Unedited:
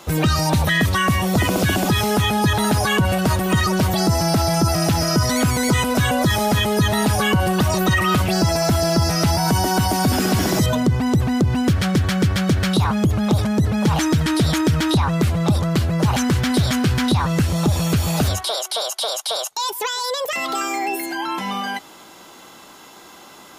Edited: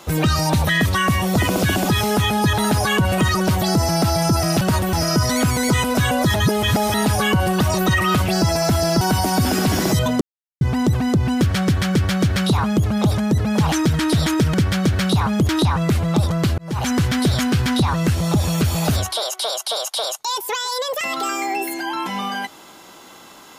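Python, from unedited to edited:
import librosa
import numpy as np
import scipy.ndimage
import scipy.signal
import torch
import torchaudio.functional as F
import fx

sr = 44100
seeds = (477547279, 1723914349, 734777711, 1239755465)

y = fx.edit(x, sr, fx.move(start_s=3.18, length_s=0.32, to_s=4.93),
    fx.reverse_span(start_s=6.34, length_s=0.6),
    fx.cut(start_s=9.01, length_s=0.67),
    fx.insert_silence(at_s=10.88, length_s=0.4),
    fx.duplicate(start_s=12.18, length_s=0.95, to_s=14.81),
    fx.fade_in_span(start_s=15.9, length_s=0.34), tone=tone)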